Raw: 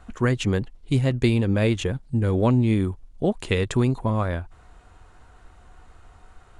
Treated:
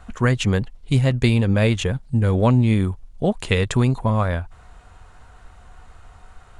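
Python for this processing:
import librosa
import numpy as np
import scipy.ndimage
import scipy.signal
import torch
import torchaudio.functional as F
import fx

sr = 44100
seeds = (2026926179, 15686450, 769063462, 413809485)

y = fx.peak_eq(x, sr, hz=330.0, db=-7.0, octaves=0.66)
y = F.gain(torch.from_numpy(y), 4.5).numpy()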